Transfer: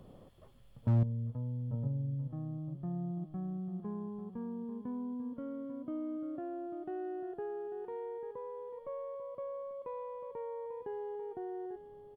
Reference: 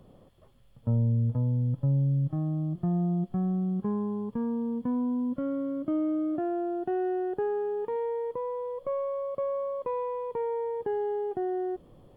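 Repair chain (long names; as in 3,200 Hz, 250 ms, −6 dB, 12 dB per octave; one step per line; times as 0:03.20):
clipped peaks rebuilt −22.5 dBFS
echo removal 843 ms −12 dB
level correction +11 dB, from 0:01.03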